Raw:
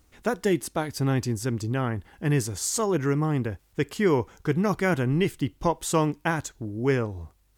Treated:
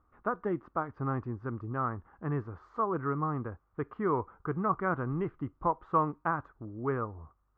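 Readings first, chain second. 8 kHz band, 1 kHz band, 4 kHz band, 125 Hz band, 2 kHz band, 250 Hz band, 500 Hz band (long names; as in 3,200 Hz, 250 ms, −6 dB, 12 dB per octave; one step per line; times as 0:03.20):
below −40 dB, −0.5 dB, below −30 dB, −9.5 dB, −9.0 dB, −9.0 dB, −8.5 dB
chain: transistor ladder low-pass 1,300 Hz, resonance 75%
level +2.5 dB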